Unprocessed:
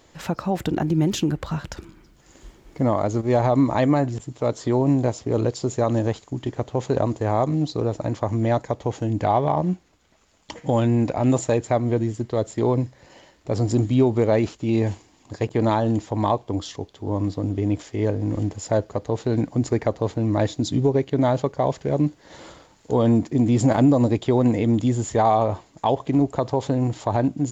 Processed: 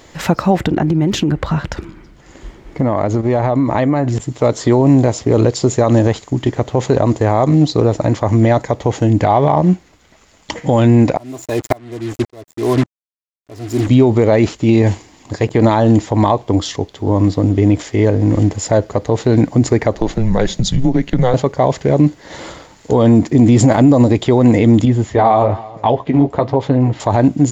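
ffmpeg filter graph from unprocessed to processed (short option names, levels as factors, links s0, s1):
-filter_complex "[0:a]asettb=1/sr,asplit=3[s0][s1][s2];[s0]atrim=end=0.554[s3];[s1]atrim=start=0.55:end=4.08,asetpts=PTS-STARTPTS,afade=t=in:d=0.004:c=qsin,afade=t=out:st=3.526:d=0.004:c=qsin,lowpass=f=3000:p=1,acompressor=threshold=0.0794:ratio=5:attack=3.2:release=140:knee=1:detection=peak[s4];[s2]atrim=start=4.076[s5];[s3][s4]acrossfade=d=0.004:c1=hsin:c2=qsin[s6];[s6][s5]acrossfade=d=0.004:c1=qsin:c2=hsin,asettb=1/sr,asplit=3[s7][s8][s9];[s7]atrim=end=11.174[s10];[s8]atrim=start=11.17:end=13.89,asetpts=PTS-STARTPTS,afade=t=in:d=0.004:c=qsin,afade=t=out:st=2.716:d=0.004:c=qsin,aecho=1:1:2.9:0.68,atrim=end_sample=119952,acrusher=bits=4:mix=0:aa=0.5,aeval=exprs='val(0)*pow(10,-31*if(lt(mod(-1.8*n/s,1),2*abs(-1.8)/1000),1-mod(-1.8*n/s,1)/(2*abs(-1.8)/1000),(mod(-1.8*n/s,1)-2*abs(-1.8)/1000)/(1-2*abs(-1.8)/1000))/20)':c=same[s11];[s9]atrim=start=13.886[s12];[s10][s11]acrossfade=d=0.004:c1=hsin:c2=qsin[s13];[s13][s12]acrossfade=d=0.004:c1=qsin:c2=hsin,asettb=1/sr,asplit=3[s14][s15][s16];[s14]atrim=end=19.954[s17];[s15]atrim=start=19.95:end=21.34,asetpts=PTS-STARTPTS,afade=t=in:d=0.004:c=qsin,afade=t=out:st=1.386:d=0.004:c=qsin,afreqshift=-120,acompressor=threshold=0.0708:ratio=2:attack=3.2:release=140:knee=1:detection=peak[s18];[s16]atrim=start=21.336[s19];[s17][s18]acrossfade=d=0.004:c1=hsin:c2=qsin[s20];[s20][s19]acrossfade=d=0.004:c1=qsin:c2=hsin,asettb=1/sr,asplit=3[s21][s22][s23];[s21]atrim=end=24.854[s24];[s22]atrim=start=24.85:end=27,asetpts=PTS-STARTPTS,afade=t=in:d=0.004:c=qsin,afade=t=out:st=2.146:d=0.004:c=qsin,lowpass=3500,aecho=1:1:329:0.0891,atrim=end_sample=94815,flanger=delay=6:depth=7.4:regen=-36:speed=1.1:shape=triangular[s25];[s23]atrim=start=26.996[s26];[s24][s25]acrossfade=d=0.004:c1=hsin:c2=qsin[s27];[s27][s26]acrossfade=d=0.004:c1=qsin:c2=hsin,equalizer=f=2000:t=o:w=0.24:g=4,alimiter=level_in=4.22:limit=0.891:release=50:level=0:latency=1,volume=0.891"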